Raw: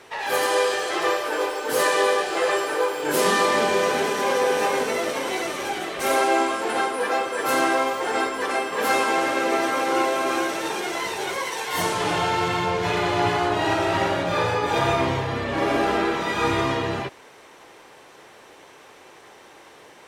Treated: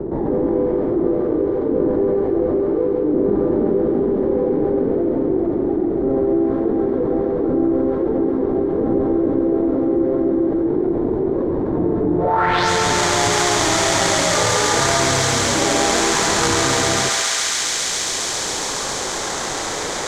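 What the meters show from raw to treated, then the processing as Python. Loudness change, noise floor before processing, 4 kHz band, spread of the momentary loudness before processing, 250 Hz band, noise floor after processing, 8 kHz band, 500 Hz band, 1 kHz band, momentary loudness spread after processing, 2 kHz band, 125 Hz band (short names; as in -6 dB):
+4.5 dB, -48 dBFS, +7.0 dB, 6 LU, +11.0 dB, -24 dBFS, +12.5 dB, +5.5 dB, 0.0 dB, 5 LU, +0.5 dB, +6.5 dB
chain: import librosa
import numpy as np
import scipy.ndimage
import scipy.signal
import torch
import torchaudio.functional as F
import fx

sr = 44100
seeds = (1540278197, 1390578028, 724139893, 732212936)

y = fx.sample_hold(x, sr, seeds[0], rate_hz=2700.0, jitter_pct=20)
y = fx.filter_sweep_lowpass(y, sr, from_hz=330.0, to_hz=7000.0, start_s=12.17, end_s=12.7, q=3.0)
y = fx.echo_thinned(y, sr, ms=137, feedback_pct=85, hz=900.0, wet_db=-3.0)
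y = fx.env_flatten(y, sr, amount_pct=70)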